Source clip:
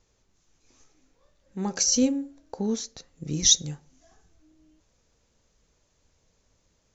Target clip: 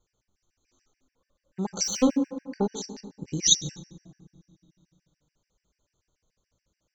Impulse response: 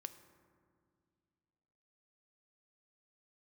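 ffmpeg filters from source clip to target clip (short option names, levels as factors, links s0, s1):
-filter_complex "[0:a]agate=range=0.447:threshold=0.00316:ratio=16:detection=peak,asplit=3[s0][s1][s2];[s0]afade=t=out:st=1.83:d=0.02[s3];[s1]asplit=2[s4][s5];[s5]highpass=f=720:p=1,volume=10,asoftclip=type=tanh:threshold=0.316[s6];[s4][s6]amix=inputs=2:normalize=0,lowpass=f=1600:p=1,volume=0.501,afade=t=in:st=1.83:d=0.02,afade=t=out:st=2.65:d=0.02[s7];[s2]afade=t=in:st=2.65:d=0.02[s8];[s3][s7][s8]amix=inputs=3:normalize=0[s9];[1:a]atrim=start_sample=2205[s10];[s9][s10]afir=irnorm=-1:irlink=0,afftfilt=real='re*gt(sin(2*PI*6.9*pts/sr)*(1-2*mod(floor(b*sr/1024/1500),2)),0)':imag='im*gt(sin(2*PI*6.9*pts/sr)*(1-2*mod(floor(b*sr/1024/1500),2)),0)':win_size=1024:overlap=0.75,volume=1.88"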